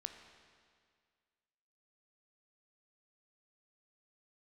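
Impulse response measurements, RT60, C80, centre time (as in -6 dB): 2.0 s, 8.5 dB, 32 ms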